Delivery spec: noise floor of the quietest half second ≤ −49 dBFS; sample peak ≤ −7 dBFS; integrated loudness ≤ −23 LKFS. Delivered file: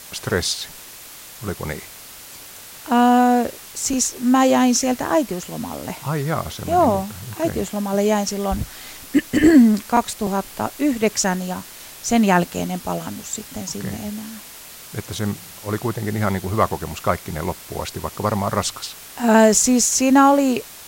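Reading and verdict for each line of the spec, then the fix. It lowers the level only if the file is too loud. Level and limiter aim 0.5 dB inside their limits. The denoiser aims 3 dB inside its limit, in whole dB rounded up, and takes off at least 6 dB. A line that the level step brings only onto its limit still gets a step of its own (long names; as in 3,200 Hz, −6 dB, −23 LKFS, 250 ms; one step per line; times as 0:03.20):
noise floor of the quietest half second −40 dBFS: out of spec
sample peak −3.0 dBFS: out of spec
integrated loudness −19.5 LKFS: out of spec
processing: broadband denoise 8 dB, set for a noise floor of −40 dBFS
level −4 dB
brickwall limiter −7.5 dBFS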